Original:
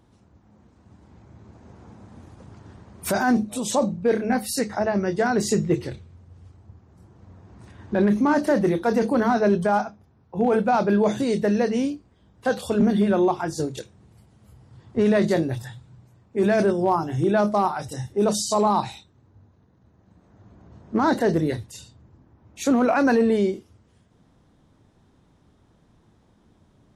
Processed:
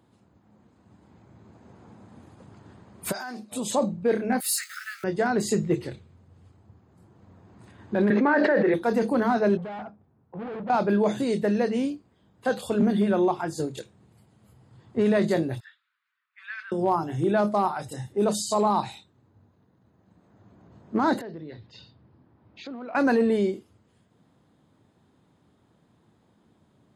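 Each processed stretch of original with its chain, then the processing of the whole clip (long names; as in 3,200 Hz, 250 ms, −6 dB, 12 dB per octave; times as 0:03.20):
0:03.12–0:03.52: high-pass filter 1,000 Hz 6 dB per octave + downward compressor 4 to 1, threshold −30 dBFS + parametric band 5,000 Hz +10.5 dB 0.31 octaves
0:04.40–0:05.04: converter with a step at zero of −37.5 dBFS + linear-phase brick-wall high-pass 1,200 Hz + high-shelf EQ 5,000 Hz +7.5 dB
0:08.10–0:08.74: loudspeaker in its box 400–3,500 Hz, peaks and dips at 470 Hz +7 dB, 690 Hz −4 dB, 1,100 Hz −5 dB, 1,700 Hz +8 dB, 3,100 Hz −8 dB + envelope flattener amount 100%
0:09.57–0:10.70: hard clipping −29 dBFS + head-to-tape spacing loss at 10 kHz 35 dB
0:15.60–0:16.72: Butterworth high-pass 1,300 Hz 48 dB per octave + high-frequency loss of the air 330 metres
0:21.21–0:22.95: Butterworth low-pass 5,200 Hz 48 dB per octave + downward compressor 3 to 1, threshold −38 dBFS
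whole clip: high-pass filter 110 Hz 12 dB per octave; notch filter 5,700 Hz, Q 5.4; level −2.5 dB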